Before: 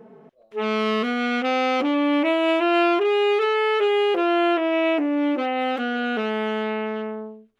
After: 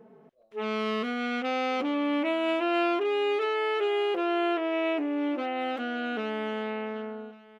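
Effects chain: echo 1.141 s -20.5 dB; gain -7 dB

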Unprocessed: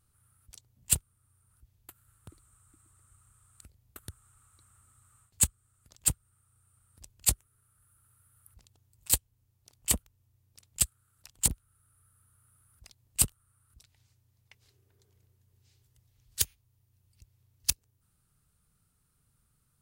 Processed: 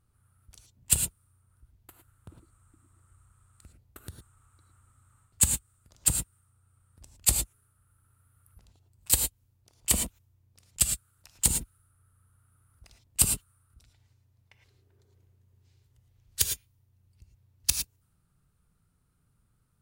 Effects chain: non-linear reverb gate 0.13 s rising, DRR 4.5 dB; mismatched tape noise reduction decoder only; gain +2 dB

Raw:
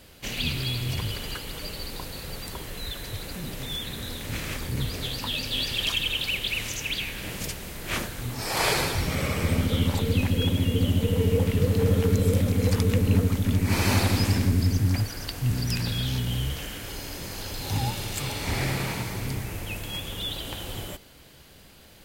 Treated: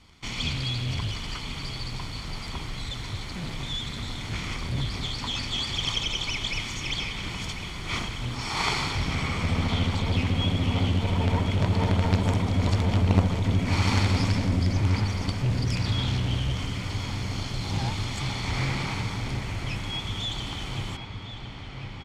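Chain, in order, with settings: minimum comb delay 0.9 ms; high shelf 3800 Hz +7.5 dB; in parallel at -9 dB: companded quantiser 2-bit; on the sum: air absorption 130 m; on a send: dark delay 1.052 s, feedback 73%, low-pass 3500 Hz, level -9.5 dB; on the sum: downsampling 32000 Hz; gain -2.5 dB

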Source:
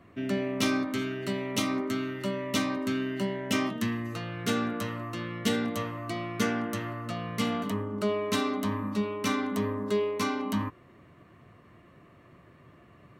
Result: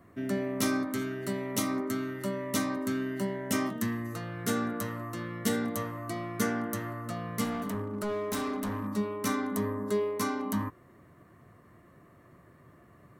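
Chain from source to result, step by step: EQ curve 1900 Hz 0 dB, 2600 Hz -9 dB, 11000 Hz +9 dB; 7.44–8.88 hard clip -27.5 dBFS, distortion -18 dB; gain -1.5 dB

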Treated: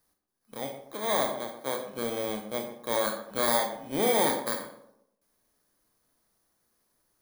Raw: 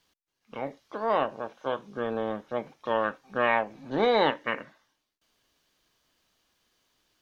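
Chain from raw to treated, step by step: FFT order left unsorted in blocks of 16 samples; tape echo 0.12 s, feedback 42%, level -8 dB, low-pass 1200 Hz; Schroeder reverb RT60 0.32 s, combs from 30 ms, DRR 5 dB; gain -2.5 dB

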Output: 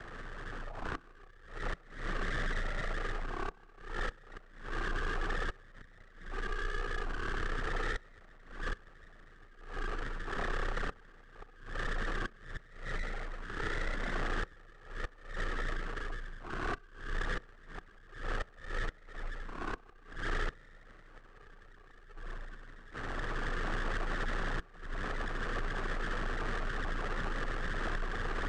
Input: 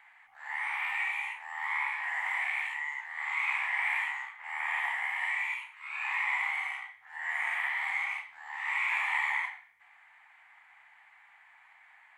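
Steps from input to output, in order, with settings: per-bin compression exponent 0.6; recorder AGC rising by 25 dB/s; Bessel low-pass 4200 Hz, order 6; reverb removal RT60 0.99 s; HPF 1200 Hz 6 dB/oct; tilt -4.5 dB/oct; full-wave rectifier; frequency shift -65 Hz; flipped gate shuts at -29 dBFS, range -25 dB; soft clip -32 dBFS, distortion -22 dB; speed mistake 78 rpm record played at 33 rpm; on a send: reverb, pre-delay 3 ms, DRR 22 dB; on the sum: gain +6.5 dB

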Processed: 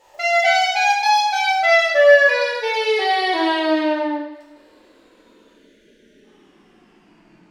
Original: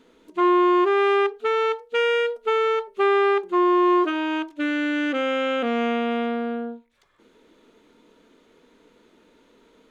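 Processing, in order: speed glide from 198% -> 66%; spectral gain 5.48–6.24, 650–1400 Hz -23 dB; two-slope reverb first 0.89 s, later 2.3 s, from -23 dB, DRR -7 dB; gain -2.5 dB

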